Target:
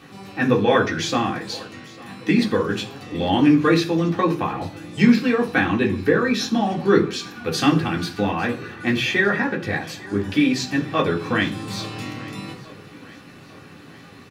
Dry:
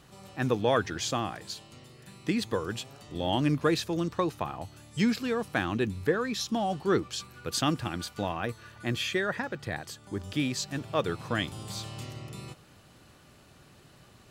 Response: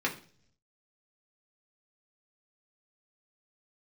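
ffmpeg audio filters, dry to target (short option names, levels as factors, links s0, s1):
-filter_complex "[0:a]asplit=2[s0][s1];[s1]acompressor=threshold=0.0178:ratio=6,volume=0.708[s2];[s0][s2]amix=inputs=2:normalize=0,aecho=1:1:851|1702|2553|3404:0.0891|0.0508|0.029|0.0165[s3];[1:a]atrim=start_sample=2205[s4];[s3][s4]afir=irnorm=-1:irlink=0"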